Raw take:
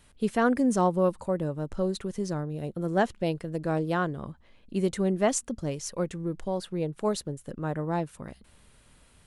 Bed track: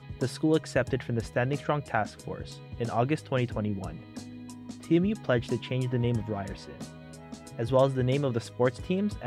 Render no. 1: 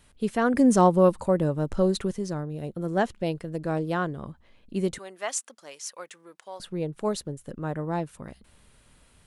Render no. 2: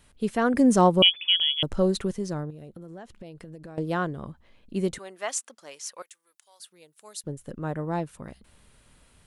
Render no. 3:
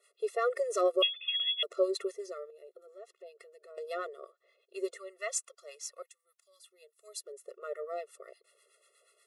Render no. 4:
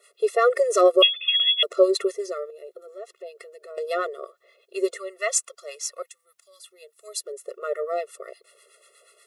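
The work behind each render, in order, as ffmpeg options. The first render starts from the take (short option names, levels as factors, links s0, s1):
-filter_complex "[0:a]asettb=1/sr,asplit=3[s0][s1][s2];[s0]atrim=end=4.984[s3];[s1]atrim=start=4.98:end=6.6,asetpts=PTS-STARTPTS,afade=t=in:d=0.004:c=qsin,afade=t=out:st=1.616:d=0.004:c=qsin,highpass=980[s4];[s2]atrim=start=6.596[s5];[s3][s4]acrossfade=d=0.004:c1=hsin:c2=qsin[s6];[s6][s5]acrossfade=d=0.004:c1=qsin:c2=hsin,asplit=3[s7][s8][s9];[s7]atrim=end=0.542[s10];[s8]atrim=start=0.538:end=2.132,asetpts=PTS-STARTPTS,volume=1.88[s11];[s9]atrim=start=2.128[s12];[s10][s11]acrossfade=d=0.004:c1=hsin:c2=hsin[s13];[s13][s12]acrossfade=d=0.004:c1=hsin:c2=hsin"
-filter_complex "[0:a]asettb=1/sr,asplit=3[s0][s1][s2];[s0]atrim=end=1.024[s3];[s1]atrim=start=1.02:end=1.63,asetpts=PTS-STARTPTS,afade=t=in:d=0.004:c=qsin,afade=t=out:st=0.606:d=0.004:c=qsin,lowpass=f=3000:t=q:w=0.5098,lowpass=f=3000:t=q:w=0.6013,lowpass=f=3000:t=q:w=0.9,lowpass=f=3000:t=q:w=2.563,afreqshift=-3500[s4];[s2]atrim=start=1.626[s5];[s3][s4]acrossfade=d=0.004:c1=hsin:c2=qsin[s6];[s6][s5]acrossfade=d=0.004:c1=qsin:c2=hsin,asettb=1/sr,asplit=3[s7][s8][s9];[s7]atrim=end=2.504[s10];[s8]atrim=start=2.5:end=3.78,asetpts=PTS-STARTPTS,afade=t=in:d=0.004:c=qsin,afade=t=out:st=1.276:d=0.004:c=qsin,acompressor=threshold=0.0126:ratio=12:attack=3.2:release=140:knee=1:detection=peak[s11];[s9]atrim=start=3.776[s12];[s10][s11]acrossfade=d=0.004:c1=hsin:c2=qsin[s13];[s13][s12]acrossfade=d=0.004:c1=qsin:c2=hsin,asettb=1/sr,asplit=3[s14][s15][s16];[s14]atrim=end=6.024[s17];[s15]atrim=start=6.02:end=7.24,asetpts=PTS-STARTPTS,afade=t=in:d=0.004:c=qsin,afade=t=out:st=1.216:d=0.004:c=qsin,aderivative[s18];[s16]atrim=start=7.236[s19];[s17][s18]acrossfade=d=0.004:c1=hsin:c2=qsin[s20];[s20][s19]acrossfade=d=0.004:c1=qsin:c2=hsin"
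-filter_complex "[0:a]acrossover=split=880[s0][s1];[s0]aeval=exprs='val(0)*(1-0.7/2+0.7/2*cos(2*PI*8.3*n/s))':c=same[s2];[s1]aeval=exprs='val(0)*(1-0.7/2-0.7/2*cos(2*PI*8.3*n/s))':c=same[s3];[s2][s3]amix=inputs=2:normalize=0,afftfilt=real='re*eq(mod(floor(b*sr/1024/360),2),1)':imag='im*eq(mod(floor(b*sr/1024/360),2),1)':win_size=1024:overlap=0.75"
-af "volume=3.55"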